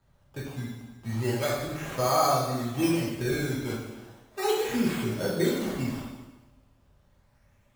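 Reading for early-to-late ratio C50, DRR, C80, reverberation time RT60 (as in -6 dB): 1.0 dB, -6.0 dB, 3.5 dB, 1.1 s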